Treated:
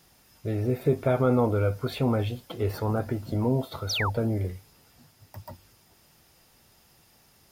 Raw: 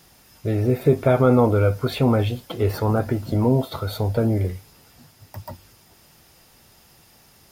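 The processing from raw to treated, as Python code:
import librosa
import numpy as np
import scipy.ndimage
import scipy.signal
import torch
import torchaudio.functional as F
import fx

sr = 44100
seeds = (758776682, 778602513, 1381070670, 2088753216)

y = fx.spec_paint(x, sr, seeds[0], shape='fall', start_s=3.89, length_s=0.21, low_hz=790.0, high_hz=6500.0, level_db=-22.0)
y = y * librosa.db_to_amplitude(-6.5)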